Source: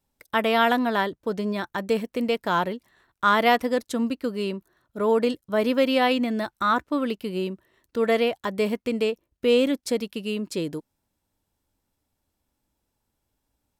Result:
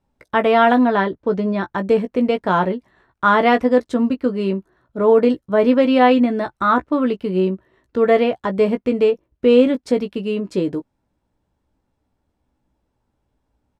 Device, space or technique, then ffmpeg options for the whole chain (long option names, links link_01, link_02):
through cloth: -filter_complex "[0:a]lowpass=9400,highshelf=frequency=2700:gain=-16,asettb=1/sr,asplit=3[link_01][link_02][link_03];[link_01]atrim=end=0.874[link_04];[link_02]atrim=start=0.87:end=1.68,asetpts=PTS-STARTPTS,afade=type=in:duration=0.004:curve=qsin,afade=type=out:start_time=0.806:duration=0.004:curve=qsin,lowpass=7000[link_05];[link_03]atrim=start=1.676[link_06];[link_04][link_05]acrossfade=duration=0.004:curve1=hsin:curve2=qsin[link_07];[link_07][link_06]acrossfade=duration=0.004:curve1=qsin:curve2=hsin,asplit=2[link_08][link_09];[link_09]adelay=16,volume=-7.5dB[link_10];[link_08][link_10]amix=inputs=2:normalize=0,volume=7.5dB"